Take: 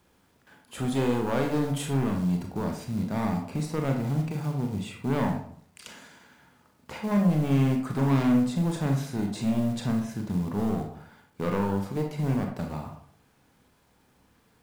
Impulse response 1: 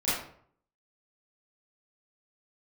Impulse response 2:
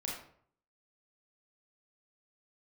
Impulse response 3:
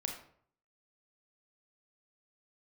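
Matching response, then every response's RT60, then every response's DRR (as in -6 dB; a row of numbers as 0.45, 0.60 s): 3; 0.60, 0.60, 0.60 s; -13.0, -4.0, 2.0 dB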